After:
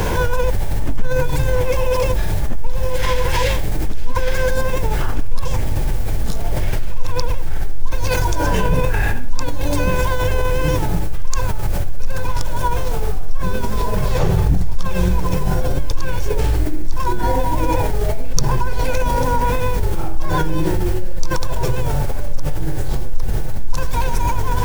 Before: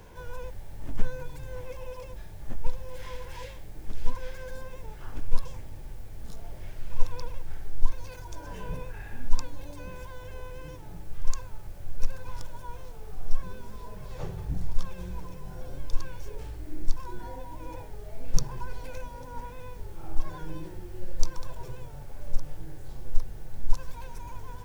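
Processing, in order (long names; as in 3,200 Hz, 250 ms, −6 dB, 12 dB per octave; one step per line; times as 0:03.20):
envelope flattener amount 70%
level +1.5 dB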